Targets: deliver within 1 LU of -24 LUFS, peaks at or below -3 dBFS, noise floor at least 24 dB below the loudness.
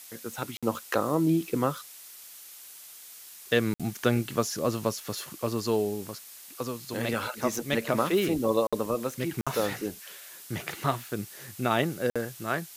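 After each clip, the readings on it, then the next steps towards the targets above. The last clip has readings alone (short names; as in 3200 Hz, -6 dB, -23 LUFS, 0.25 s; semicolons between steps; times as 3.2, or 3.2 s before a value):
dropouts 5; longest dropout 56 ms; noise floor -48 dBFS; noise floor target -54 dBFS; loudness -29.5 LUFS; peak -10.0 dBFS; loudness target -24.0 LUFS
-> interpolate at 0.57/3.74/8.67/9.41/12.1, 56 ms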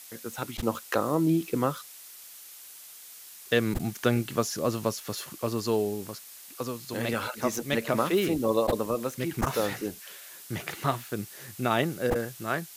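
dropouts 0; noise floor -47 dBFS; noise floor target -53 dBFS
-> denoiser 6 dB, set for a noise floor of -47 dBFS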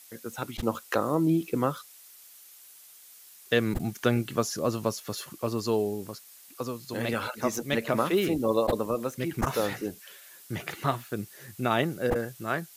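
noise floor -52 dBFS; noise floor target -54 dBFS
-> denoiser 6 dB, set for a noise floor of -52 dBFS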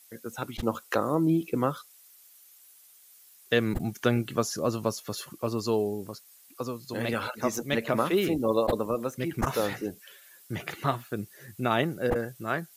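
noise floor -56 dBFS; loudness -29.5 LUFS; peak -10.0 dBFS; loudness target -24.0 LUFS
-> gain +5.5 dB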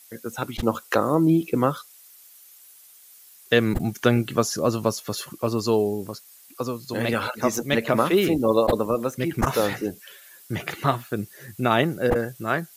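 loudness -24.0 LUFS; peak -4.5 dBFS; noise floor -51 dBFS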